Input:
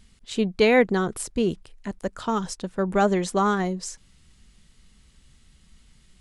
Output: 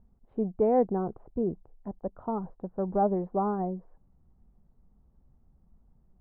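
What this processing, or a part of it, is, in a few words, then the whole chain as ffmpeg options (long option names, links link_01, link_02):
under water: -af "lowpass=frequency=920:width=0.5412,lowpass=frequency=920:width=1.3066,equalizer=frequency=750:width_type=o:width=0.49:gain=5,volume=-6dB"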